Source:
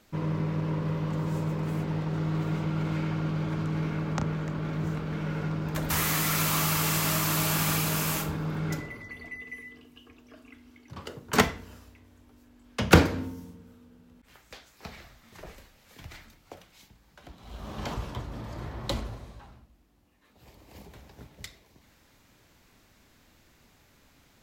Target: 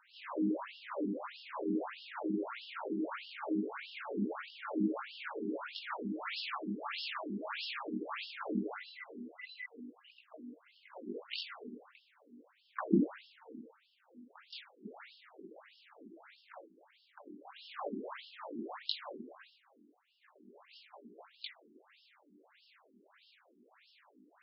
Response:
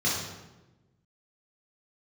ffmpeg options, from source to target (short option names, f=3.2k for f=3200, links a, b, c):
-filter_complex "[0:a]acrossover=split=230[a][b];[b]acompressor=threshold=-33dB:ratio=10[c];[a][c]amix=inputs=2:normalize=0,flanger=delay=17:depth=7:speed=0.38,asplit=2[d][e];[e]asetrate=88200,aresample=44100,atempo=0.5,volume=-17dB[f];[d][f]amix=inputs=2:normalize=0,asplit=2[g][h];[1:a]atrim=start_sample=2205[i];[h][i]afir=irnorm=-1:irlink=0,volume=-20dB[j];[g][j]amix=inputs=2:normalize=0,afftfilt=real='re*between(b*sr/1024,280*pow(3900/280,0.5+0.5*sin(2*PI*1.6*pts/sr))/1.41,280*pow(3900/280,0.5+0.5*sin(2*PI*1.6*pts/sr))*1.41)':imag='im*between(b*sr/1024,280*pow(3900/280,0.5+0.5*sin(2*PI*1.6*pts/sr))/1.41,280*pow(3900/280,0.5+0.5*sin(2*PI*1.6*pts/sr))*1.41)':win_size=1024:overlap=0.75,volume=7.5dB"